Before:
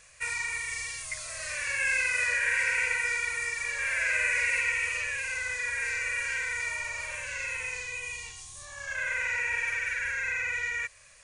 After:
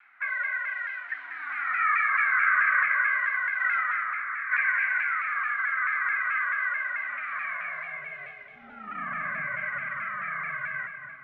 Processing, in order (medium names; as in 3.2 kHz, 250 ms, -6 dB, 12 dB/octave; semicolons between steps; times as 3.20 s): 3.60–4.52 s: compressor with a negative ratio -32 dBFS, ratio -0.5; high-pass sweep 1.7 kHz -> 79 Hz, 7.32–10.36 s; mistuned SSB -340 Hz 190–2900 Hz; on a send at -6 dB: reverberation RT60 2.0 s, pre-delay 173 ms; on the sum: vibrato with a chosen wave saw down 4.6 Hz, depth 100 cents; trim -2.5 dB